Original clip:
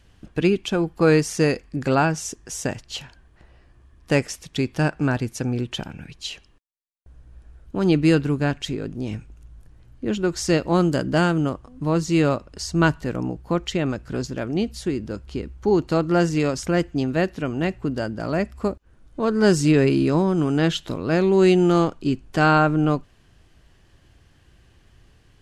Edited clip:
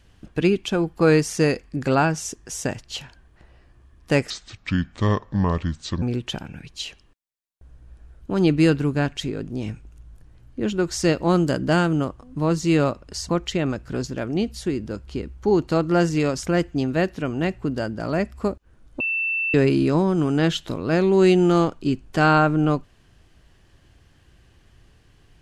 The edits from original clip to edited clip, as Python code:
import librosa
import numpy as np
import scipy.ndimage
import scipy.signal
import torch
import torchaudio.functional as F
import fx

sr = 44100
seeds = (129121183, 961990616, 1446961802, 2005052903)

y = fx.edit(x, sr, fx.speed_span(start_s=4.3, length_s=1.17, speed=0.68),
    fx.cut(start_s=12.74, length_s=0.75),
    fx.bleep(start_s=19.2, length_s=0.54, hz=2670.0, db=-21.0), tone=tone)